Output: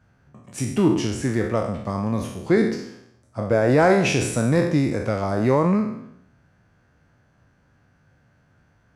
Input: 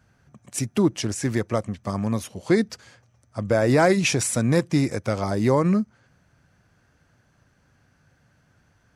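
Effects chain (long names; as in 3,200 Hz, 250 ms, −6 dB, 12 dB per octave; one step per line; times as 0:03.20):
peak hold with a decay on every bin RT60 0.74 s
high-shelf EQ 3,500 Hz −10 dB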